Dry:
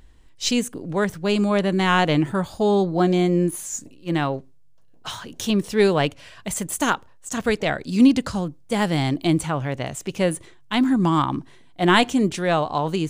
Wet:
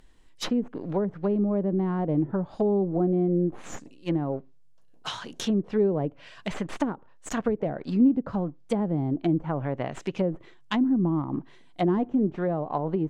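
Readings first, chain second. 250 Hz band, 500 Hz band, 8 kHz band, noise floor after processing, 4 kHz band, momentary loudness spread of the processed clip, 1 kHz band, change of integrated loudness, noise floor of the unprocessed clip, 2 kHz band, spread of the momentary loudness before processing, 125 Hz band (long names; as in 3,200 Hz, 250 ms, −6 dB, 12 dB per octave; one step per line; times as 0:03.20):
−4.0 dB, −5.0 dB, −15.0 dB, −51 dBFS, −13.0 dB, 12 LU, −10.5 dB, −5.5 dB, −48 dBFS, −15.5 dB, 12 LU, −4.5 dB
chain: stylus tracing distortion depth 0.1 ms
in parallel at −5.5 dB: dead-zone distortion −36 dBFS
on the sum: downward compressor 1.5 to 1, threshold −20 dBFS, peak gain reduction 5 dB
treble cut that deepens with the level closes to 480 Hz, closed at −16.5 dBFS
parametric band 70 Hz −13 dB 1.1 octaves
level −3 dB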